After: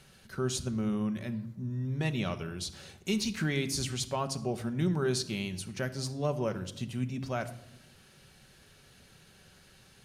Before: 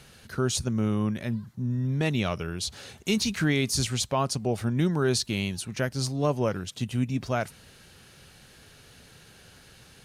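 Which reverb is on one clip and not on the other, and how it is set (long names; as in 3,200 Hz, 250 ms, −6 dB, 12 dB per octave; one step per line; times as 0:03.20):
rectangular room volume 2,800 cubic metres, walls furnished, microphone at 1.1 metres
level −6.5 dB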